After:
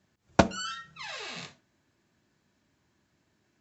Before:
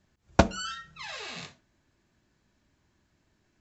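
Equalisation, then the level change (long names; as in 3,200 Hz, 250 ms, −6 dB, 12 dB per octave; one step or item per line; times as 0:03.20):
high-pass filter 99 Hz 12 dB per octave
0.0 dB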